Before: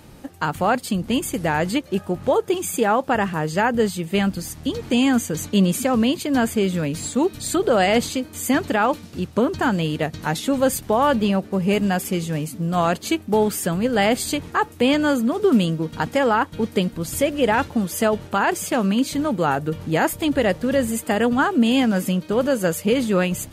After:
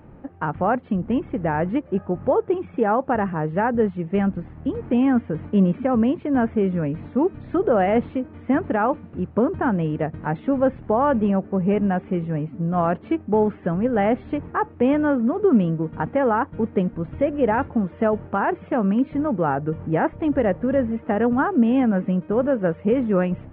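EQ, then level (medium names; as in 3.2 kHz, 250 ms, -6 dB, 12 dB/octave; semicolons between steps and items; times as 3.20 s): Gaussian low-pass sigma 4.8 samples; 0.0 dB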